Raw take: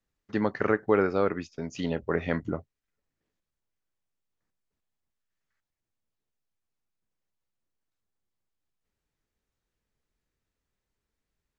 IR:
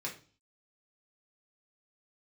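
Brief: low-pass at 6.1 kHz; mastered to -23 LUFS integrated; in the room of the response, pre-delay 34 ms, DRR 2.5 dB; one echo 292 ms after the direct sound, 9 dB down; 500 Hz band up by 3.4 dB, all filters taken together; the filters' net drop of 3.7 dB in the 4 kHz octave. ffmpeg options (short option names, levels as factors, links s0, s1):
-filter_complex "[0:a]lowpass=6100,equalizer=f=500:t=o:g=4,equalizer=f=4000:t=o:g=-4.5,aecho=1:1:292:0.355,asplit=2[s0][s1];[1:a]atrim=start_sample=2205,adelay=34[s2];[s1][s2]afir=irnorm=-1:irlink=0,volume=0.631[s3];[s0][s3]amix=inputs=2:normalize=0,volume=1.19"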